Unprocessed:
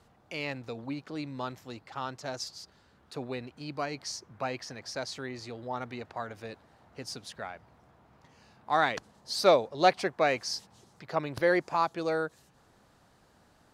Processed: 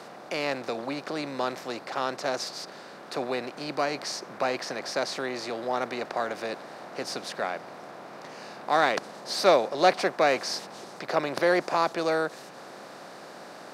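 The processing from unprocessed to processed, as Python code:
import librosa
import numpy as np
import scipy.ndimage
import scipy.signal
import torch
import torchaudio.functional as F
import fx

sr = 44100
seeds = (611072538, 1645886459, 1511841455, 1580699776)

y = fx.bin_compress(x, sr, power=0.6)
y = scipy.signal.sosfilt(scipy.signal.butter(4, 160.0, 'highpass', fs=sr, output='sos'), y)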